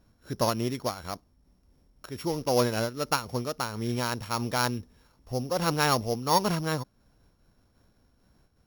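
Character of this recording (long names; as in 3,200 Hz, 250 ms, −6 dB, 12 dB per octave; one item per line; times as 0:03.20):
a buzz of ramps at a fixed pitch in blocks of 8 samples
amplitude modulation by smooth noise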